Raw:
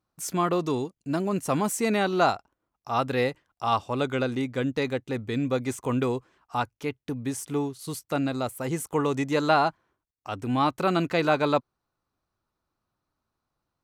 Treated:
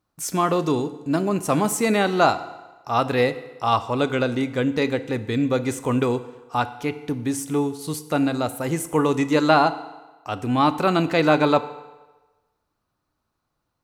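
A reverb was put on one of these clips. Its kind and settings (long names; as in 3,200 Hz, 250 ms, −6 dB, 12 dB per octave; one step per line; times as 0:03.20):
feedback delay network reverb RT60 1.2 s, low-frequency decay 0.8×, high-frequency decay 0.85×, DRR 11.5 dB
level +4.5 dB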